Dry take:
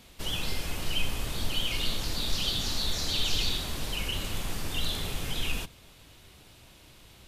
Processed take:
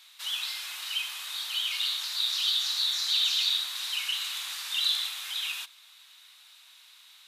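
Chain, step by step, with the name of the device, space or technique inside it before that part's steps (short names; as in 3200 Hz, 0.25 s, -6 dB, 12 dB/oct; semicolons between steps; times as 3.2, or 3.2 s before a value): headphones lying on a table (HPF 1100 Hz 24 dB/oct; bell 3800 Hz +9 dB 0.25 oct); 3.75–5.09 bell 4400 Hz +3 dB 2.4 oct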